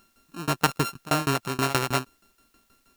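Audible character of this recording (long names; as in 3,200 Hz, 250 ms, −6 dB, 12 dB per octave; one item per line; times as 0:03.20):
a buzz of ramps at a fixed pitch in blocks of 32 samples
tremolo saw down 6.3 Hz, depth 100%
a quantiser's noise floor 12 bits, dither triangular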